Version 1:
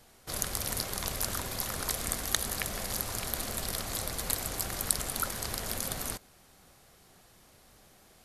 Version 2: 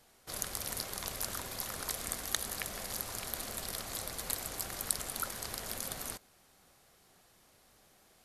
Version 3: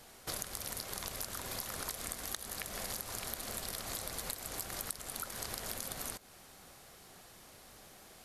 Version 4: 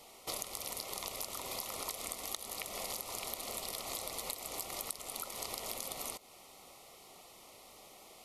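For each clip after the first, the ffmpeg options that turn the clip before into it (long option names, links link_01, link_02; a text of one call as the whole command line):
ffmpeg -i in.wav -af "lowshelf=frequency=210:gain=-5.5,volume=-4.5dB" out.wav
ffmpeg -i in.wav -af "acompressor=threshold=-45dB:ratio=10,volume=8.5dB" out.wav
ffmpeg -i in.wav -af "asuperstop=centerf=1600:order=4:qfactor=2.3,bass=frequency=250:gain=-11,treble=frequency=4000:gain=-3,volume=2.5dB" out.wav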